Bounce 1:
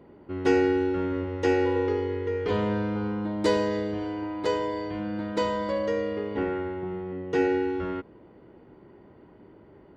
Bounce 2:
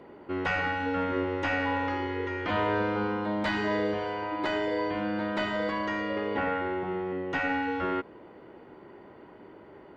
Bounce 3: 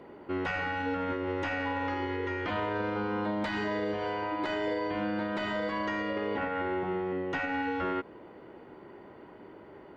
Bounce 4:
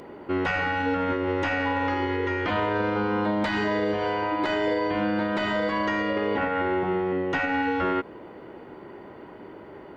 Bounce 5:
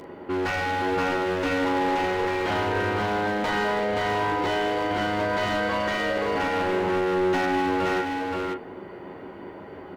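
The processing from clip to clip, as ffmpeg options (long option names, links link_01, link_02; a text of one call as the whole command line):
ffmpeg -i in.wav -filter_complex "[0:a]asplit=2[link_01][link_02];[link_02]highpass=frequency=720:poles=1,volume=13dB,asoftclip=type=tanh:threshold=-11dB[link_03];[link_01][link_03]amix=inputs=2:normalize=0,lowpass=frequency=4300:poles=1,volume=-6dB,afftfilt=real='re*lt(hypot(re,im),0.316)':imag='im*lt(hypot(re,im),0.316)':win_size=1024:overlap=0.75,acrossover=split=3100[link_04][link_05];[link_05]acompressor=threshold=-51dB:ratio=4:attack=1:release=60[link_06];[link_04][link_06]amix=inputs=2:normalize=0" out.wav
ffmpeg -i in.wav -af "alimiter=limit=-23.5dB:level=0:latency=1:release=85" out.wav
ffmpeg -i in.wav -af "acompressor=mode=upward:threshold=-54dB:ratio=2.5,volume=6.5dB" out.wav
ffmpeg -i in.wav -filter_complex "[0:a]asplit=2[link_01][link_02];[link_02]aecho=0:1:11|41:0.501|0.422[link_03];[link_01][link_03]amix=inputs=2:normalize=0,asoftclip=type=hard:threshold=-23.5dB,asplit=2[link_04][link_05];[link_05]aecho=0:1:525:0.708[link_06];[link_04][link_06]amix=inputs=2:normalize=0" out.wav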